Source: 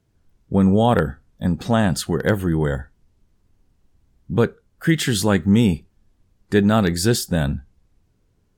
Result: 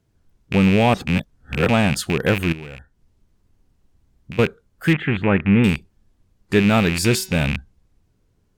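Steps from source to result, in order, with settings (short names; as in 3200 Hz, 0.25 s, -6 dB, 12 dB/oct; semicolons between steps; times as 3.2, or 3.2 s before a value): rattling part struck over -22 dBFS, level -12 dBFS; 0.94–1.69 reverse; 2.52–4.39 compressor 10:1, threshold -32 dBFS, peak gain reduction 16.5 dB; 4.93–5.64 inverse Chebyshev low-pass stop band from 4900 Hz, stop band 40 dB; 6.9–7.4 de-hum 188.7 Hz, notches 37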